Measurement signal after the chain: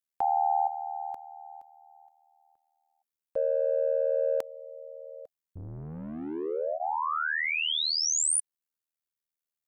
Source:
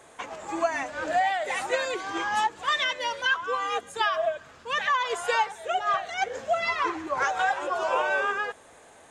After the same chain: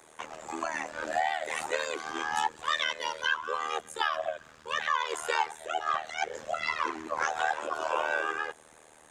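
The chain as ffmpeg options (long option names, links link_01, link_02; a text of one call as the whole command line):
ffmpeg -i in.wav -filter_complex "[0:a]highshelf=frequency=8300:gain=7.5,bandreject=frequency=680:width=14,tremolo=f=78:d=0.974,acrossover=split=380|1600[link_01][link_02][link_03];[link_01]asoftclip=type=tanh:threshold=-38dB[link_04];[link_04][link_02][link_03]amix=inputs=3:normalize=0" out.wav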